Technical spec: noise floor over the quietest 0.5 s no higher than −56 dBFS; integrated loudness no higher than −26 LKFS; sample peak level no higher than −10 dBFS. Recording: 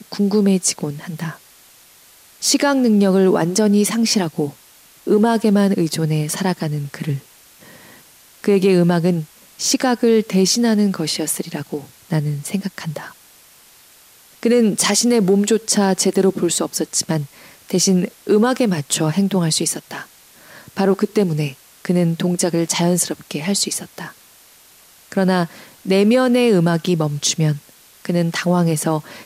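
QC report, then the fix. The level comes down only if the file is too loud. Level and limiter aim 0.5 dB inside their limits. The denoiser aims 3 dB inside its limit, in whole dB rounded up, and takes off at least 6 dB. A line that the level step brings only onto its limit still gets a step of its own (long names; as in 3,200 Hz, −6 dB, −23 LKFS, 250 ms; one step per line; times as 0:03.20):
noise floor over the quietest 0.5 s −48 dBFS: out of spec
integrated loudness −17.5 LKFS: out of spec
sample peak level −5.0 dBFS: out of spec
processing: level −9 dB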